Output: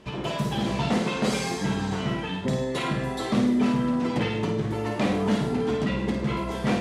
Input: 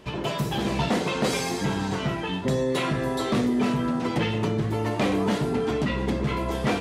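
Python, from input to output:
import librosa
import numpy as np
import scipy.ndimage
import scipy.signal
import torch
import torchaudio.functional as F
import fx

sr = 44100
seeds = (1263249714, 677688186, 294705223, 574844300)

y = scipy.signal.sosfilt(scipy.signal.butter(2, 11000.0, 'lowpass', fs=sr, output='sos'), x)
y = fx.peak_eq(y, sr, hz=210.0, db=4.5, octaves=0.33)
y = fx.room_flutter(y, sr, wall_m=9.0, rt60_s=0.49)
y = F.gain(torch.from_numpy(y), -2.5).numpy()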